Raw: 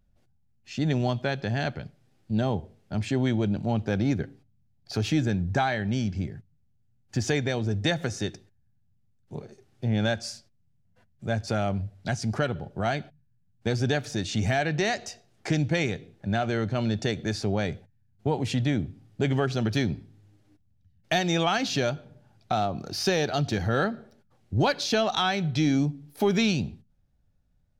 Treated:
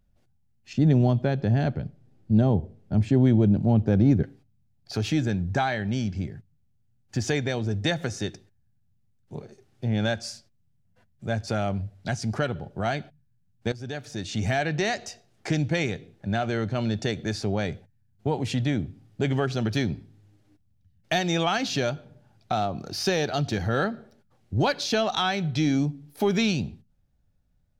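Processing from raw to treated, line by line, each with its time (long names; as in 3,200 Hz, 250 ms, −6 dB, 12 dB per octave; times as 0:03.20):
0:00.73–0:04.23: tilt shelving filter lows +7.5 dB, about 750 Hz
0:13.72–0:14.52: fade in linear, from −16 dB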